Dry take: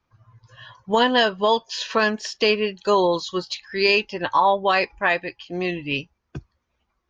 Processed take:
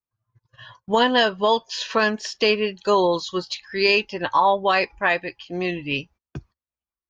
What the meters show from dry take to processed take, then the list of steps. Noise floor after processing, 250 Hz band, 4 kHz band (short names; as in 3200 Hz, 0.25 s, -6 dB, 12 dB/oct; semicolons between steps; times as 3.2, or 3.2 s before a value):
under -85 dBFS, 0.0 dB, 0.0 dB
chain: gate -47 dBFS, range -25 dB